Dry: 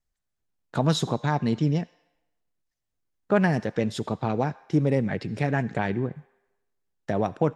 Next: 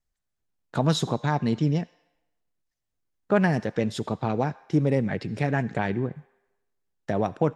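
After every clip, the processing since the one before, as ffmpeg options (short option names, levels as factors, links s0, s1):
-af anull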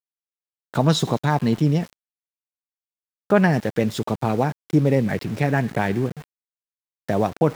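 -af "areverse,acompressor=mode=upward:threshold=0.0141:ratio=2.5,areverse,aeval=exprs='val(0)*gte(abs(val(0)),0.0106)':c=same,volume=1.68"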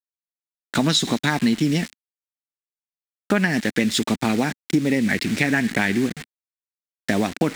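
-af "acrusher=bits=8:dc=4:mix=0:aa=0.000001,equalizer=f=125:t=o:w=1:g=-10,equalizer=f=250:t=o:w=1:g=8,equalizer=f=500:t=o:w=1:g=-6,equalizer=f=1000:t=o:w=1:g=-5,equalizer=f=2000:t=o:w=1:g=9,equalizer=f=4000:t=o:w=1:g=6,equalizer=f=8000:t=o:w=1:g=8,acompressor=threshold=0.112:ratio=6,volume=1.5"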